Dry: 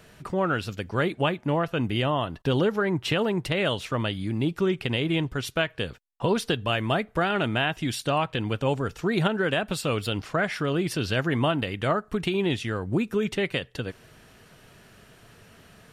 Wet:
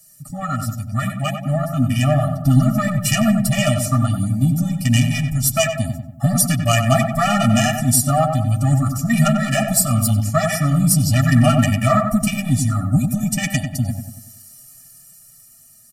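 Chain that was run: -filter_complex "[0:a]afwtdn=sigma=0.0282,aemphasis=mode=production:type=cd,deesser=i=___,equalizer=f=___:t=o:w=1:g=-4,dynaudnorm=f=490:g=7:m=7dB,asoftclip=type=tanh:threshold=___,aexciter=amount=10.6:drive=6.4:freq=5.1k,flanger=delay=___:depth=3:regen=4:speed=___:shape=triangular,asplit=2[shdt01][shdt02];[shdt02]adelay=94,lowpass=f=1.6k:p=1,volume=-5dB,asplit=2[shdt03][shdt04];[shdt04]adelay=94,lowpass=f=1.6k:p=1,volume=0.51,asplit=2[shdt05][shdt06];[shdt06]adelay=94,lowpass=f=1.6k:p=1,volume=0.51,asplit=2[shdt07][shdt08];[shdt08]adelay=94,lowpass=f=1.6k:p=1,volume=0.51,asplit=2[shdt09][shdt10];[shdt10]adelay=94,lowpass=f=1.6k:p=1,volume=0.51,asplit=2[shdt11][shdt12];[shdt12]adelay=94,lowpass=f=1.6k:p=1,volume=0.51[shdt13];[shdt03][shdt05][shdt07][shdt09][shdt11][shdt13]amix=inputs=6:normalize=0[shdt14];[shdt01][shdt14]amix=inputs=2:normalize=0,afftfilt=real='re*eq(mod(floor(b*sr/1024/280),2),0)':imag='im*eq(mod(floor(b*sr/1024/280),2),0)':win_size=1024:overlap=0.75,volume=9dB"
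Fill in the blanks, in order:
0.3, 850, -9.5dB, 6.4, 0.46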